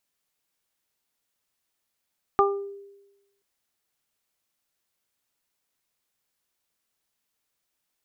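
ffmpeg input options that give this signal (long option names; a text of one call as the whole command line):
ffmpeg -f lavfi -i "aevalsrc='0.126*pow(10,-3*t/1.04)*sin(2*PI*399*t)+0.126*pow(10,-3*t/0.32)*sin(2*PI*798*t)+0.168*pow(10,-3*t/0.32)*sin(2*PI*1197*t)':duration=1.03:sample_rate=44100" out.wav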